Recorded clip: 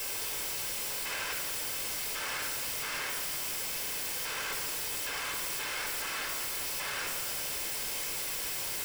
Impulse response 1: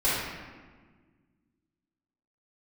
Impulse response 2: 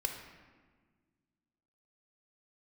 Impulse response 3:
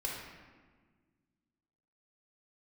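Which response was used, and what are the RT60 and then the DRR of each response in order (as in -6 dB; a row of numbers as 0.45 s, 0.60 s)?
2; 1.5 s, 1.5 s, 1.5 s; -12.5 dB, 3.0 dB, -3.5 dB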